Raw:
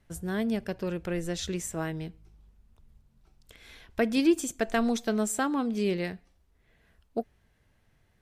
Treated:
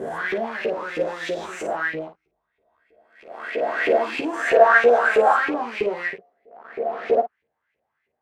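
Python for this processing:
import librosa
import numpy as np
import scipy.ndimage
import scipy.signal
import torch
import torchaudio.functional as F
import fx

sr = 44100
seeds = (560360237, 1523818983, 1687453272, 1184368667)

p1 = fx.spec_swells(x, sr, rise_s=1.83)
p2 = fx.band_shelf(p1, sr, hz=890.0, db=11.5, octaves=2.8, at=(4.47, 5.33))
p3 = fx.fuzz(p2, sr, gain_db=33.0, gate_db=-40.0)
p4 = p2 + F.gain(torch.from_numpy(p3), -3.5).numpy()
p5 = fx.filter_lfo_bandpass(p4, sr, shape='saw_up', hz=3.1, low_hz=400.0, high_hz=2600.0, q=5.5)
p6 = p5 + fx.room_early_taps(p5, sr, ms=(13, 54), db=(-4.5, -9.0), dry=0)
y = F.gain(torch.from_numpy(p6), 3.0).numpy()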